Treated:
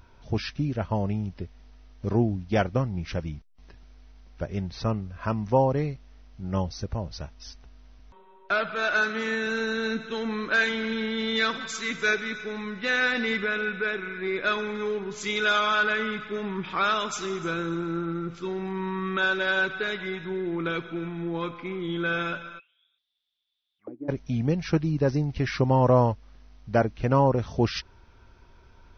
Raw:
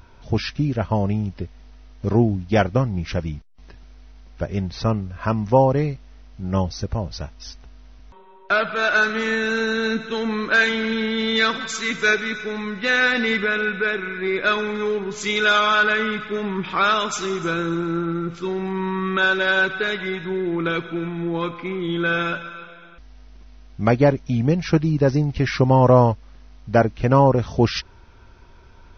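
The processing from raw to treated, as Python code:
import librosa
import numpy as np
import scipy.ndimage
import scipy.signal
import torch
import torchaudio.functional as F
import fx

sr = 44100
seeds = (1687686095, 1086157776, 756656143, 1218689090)

y = fx.highpass(x, sr, hz=79.0, slope=12, at=(9.01, 9.47))
y = fx.auto_wah(y, sr, base_hz=310.0, top_hz=4000.0, q=17.0, full_db=-14.5, direction='down', at=(22.58, 24.08), fade=0.02)
y = F.gain(torch.from_numpy(y), -6.0).numpy()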